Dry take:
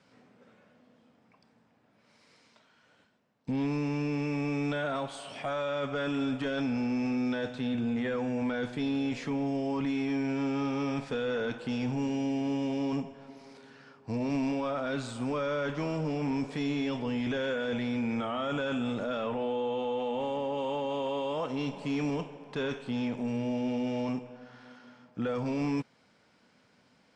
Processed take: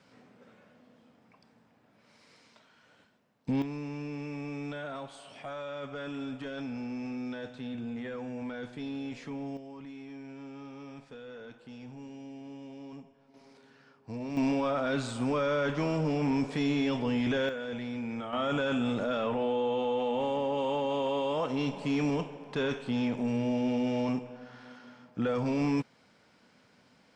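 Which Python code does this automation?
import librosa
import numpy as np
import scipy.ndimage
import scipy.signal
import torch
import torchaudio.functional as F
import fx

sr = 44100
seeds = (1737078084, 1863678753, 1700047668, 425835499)

y = fx.gain(x, sr, db=fx.steps((0.0, 2.0), (3.62, -7.0), (9.57, -14.5), (13.34, -6.0), (14.37, 2.5), (17.49, -5.0), (18.33, 2.0)))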